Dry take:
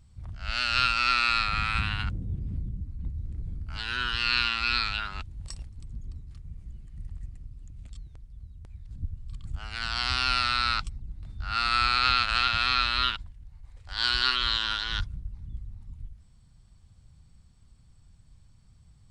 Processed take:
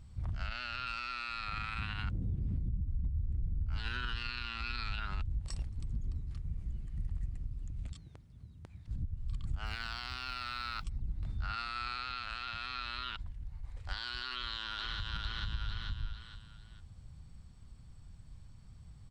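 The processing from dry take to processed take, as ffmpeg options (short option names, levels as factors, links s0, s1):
-filter_complex "[0:a]asettb=1/sr,asplit=3[s0][s1][s2];[s0]atrim=end=0.474[s3];[s1]atrim=start=0.47:end=0.87,asetpts=PTS-STARTPTS,afade=t=in:d=0.004:c=qsin,afade=t=out:st=0.396:d=0.004:c=qsin,highshelf=f=6200:g=-12[s4];[s2]atrim=start=0.866[s5];[s3][s4]acrossfade=d=0.004:c1=hsin:c2=qsin[s6];[s6][s5]acrossfade=d=0.004:c1=qsin:c2=hsin,asettb=1/sr,asplit=3[s7][s8][s9];[s7]atrim=end=2.684[s10];[s8]atrim=start=2.68:end=5.39,asetpts=PTS-STARTPTS,afade=t=in:d=0.004:c=qsin,afade=t=out:st=2.706:d=0.004:c=qsin,lowshelf=f=180:g=10.5[s11];[s9]atrim=start=5.386[s12];[s10][s11]acrossfade=d=0.004:c1=hsin:c2=qsin[s13];[s13][s12]acrossfade=d=0.004:c1=qsin:c2=hsin,asettb=1/sr,asplit=3[s14][s15][s16];[s14]atrim=end=7.924[s17];[s15]atrim=start=7.92:end=8.88,asetpts=PTS-STARTPTS,afade=t=in:d=0.004:c=qsin,afade=t=out:st=0.956:d=0.004:c=qsin,highpass=130[s18];[s16]atrim=start=8.876[s19];[s17][s18]acrossfade=d=0.004:c1=hsin:c2=qsin[s20];[s20][s19]acrossfade=d=0.004:c1=qsin:c2=hsin,asettb=1/sr,asplit=3[s21][s22][s23];[s21]atrim=end=9.664[s24];[s22]atrim=start=9.66:end=10.84,asetpts=PTS-STARTPTS,afade=t=in:d=0.004:c=qsin,afade=t=out:st=1.176:d=0.004:c=qsin,acrusher=bits=7:mode=log:mix=0:aa=0.000001[s25];[s23]atrim=start=10.836[s26];[s24][s25]acrossfade=d=0.004:c1=hsin:c2=qsin[s27];[s27][s26]acrossfade=d=0.004:c1=qsin:c2=hsin,asplit=2[s28][s29];[s29]afade=t=in:st=14.33:d=0.01,afade=t=out:st=15.09:d=0.01,aecho=0:1:450|900|1350|1800:0.421697|0.147594|0.0516578|0.0180802[s30];[s28][s30]amix=inputs=2:normalize=0,highshelf=f=3900:g=-6,acompressor=threshold=0.02:ratio=6,alimiter=level_in=2.11:limit=0.0631:level=0:latency=1:release=41,volume=0.473,volume=1.5"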